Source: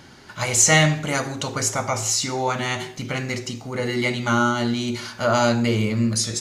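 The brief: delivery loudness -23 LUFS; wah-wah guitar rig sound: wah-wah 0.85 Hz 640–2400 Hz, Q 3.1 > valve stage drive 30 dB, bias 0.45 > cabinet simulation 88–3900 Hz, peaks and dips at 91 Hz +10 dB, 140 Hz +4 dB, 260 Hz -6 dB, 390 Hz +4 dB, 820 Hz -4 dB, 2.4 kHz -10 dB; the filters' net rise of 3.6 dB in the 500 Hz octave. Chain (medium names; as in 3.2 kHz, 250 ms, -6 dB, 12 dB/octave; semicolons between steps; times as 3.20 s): peaking EQ 500 Hz +4 dB; wah-wah 0.85 Hz 640–2400 Hz, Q 3.1; valve stage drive 30 dB, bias 0.45; cabinet simulation 88–3900 Hz, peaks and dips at 91 Hz +10 dB, 140 Hz +4 dB, 260 Hz -6 dB, 390 Hz +4 dB, 820 Hz -4 dB, 2.4 kHz -10 dB; trim +16 dB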